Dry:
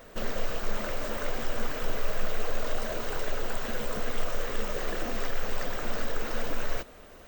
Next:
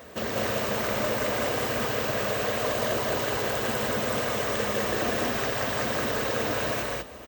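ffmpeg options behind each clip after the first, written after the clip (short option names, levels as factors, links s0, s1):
-filter_complex "[0:a]highpass=f=62:w=0.5412,highpass=f=62:w=1.3066,bandreject=f=1400:w=15,asplit=2[s0][s1];[s1]aecho=0:1:160.3|198.3:0.562|0.891[s2];[s0][s2]amix=inputs=2:normalize=0,volume=1.68"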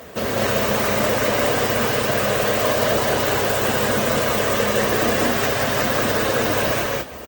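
-filter_complex "[0:a]highpass=51,asplit=2[s0][s1];[s1]adelay=29,volume=0.282[s2];[s0][s2]amix=inputs=2:normalize=0,volume=2.37" -ar 48000 -c:a libopus -b:a 16k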